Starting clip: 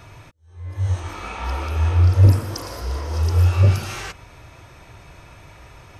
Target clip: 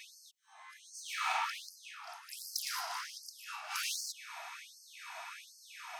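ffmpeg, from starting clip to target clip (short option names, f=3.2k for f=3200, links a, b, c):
-af "areverse,acompressor=threshold=-26dB:ratio=12,areverse,highpass=f=400:t=q:w=4.9,volume=29dB,asoftclip=hard,volume=-29dB,afftfilt=real='re*gte(b*sr/1024,630*pow(4400/630,0.5+0.5*sin(2*PI*1.3*pts/sr)))':imag='im*gte(b*sr/1024,630*pow(4400/630,0.5+0.5*sin(2*PI*1.3*pts/sr)))':win_size=1024:overlap=0.75,volume=2.5dB"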